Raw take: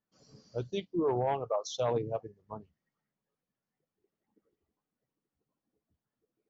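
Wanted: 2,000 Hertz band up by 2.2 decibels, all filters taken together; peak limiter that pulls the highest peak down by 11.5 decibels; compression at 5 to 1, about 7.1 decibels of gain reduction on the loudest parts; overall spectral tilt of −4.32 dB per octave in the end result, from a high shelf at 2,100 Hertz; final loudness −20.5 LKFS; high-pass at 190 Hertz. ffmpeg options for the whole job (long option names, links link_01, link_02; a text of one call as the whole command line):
ffmpeg -i in.wav -af "highpass=190,equalizer=frequency=2000:width_type=o:gain=5,highshelf=frequency=2100:gain=-4,acompressor=threshold=-34dB:ratio=5,volume=26.5dB,alimiter=limit=-10.5dB:level=0:latency=1" out.wav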